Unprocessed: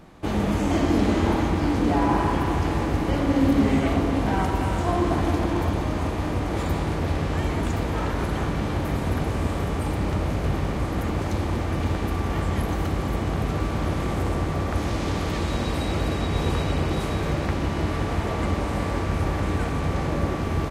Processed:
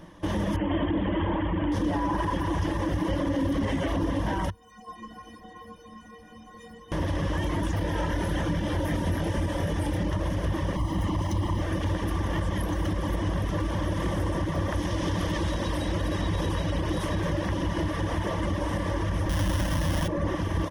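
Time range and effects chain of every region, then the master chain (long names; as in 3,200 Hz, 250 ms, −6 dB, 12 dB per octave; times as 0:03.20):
0:00.56–0:01.72: Chebyshev low-pass filter 3,200 Hz, order 6 + highs frequency-modulated by the lows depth 0.12 ms
0:04.50–0:06.92: running median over 3 samples + stiff-string resonator 220 Hz, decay 0.6 s, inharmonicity 0.03
0:07.78–0:10.09: notch filter 1,100 Hz, Q 6.5 + double-tracking delay 24 ms −5 dB
0:10.76–0:11.62: running median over 3 samples + parametric band 1,700 Hz −6 dB 0.69 octaves + comb filter 1 ms, depth 43%
0:19.29–0:20.08: each half-wave held at its own peak + parametric band 420 Hz −15 dB 0.25 octaves
whole clip: reverb reduction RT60 0.78 s; EQ curve with evenly spaced ripples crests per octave 1.2, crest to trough 10 dB; brickwall limiter −19 dBFS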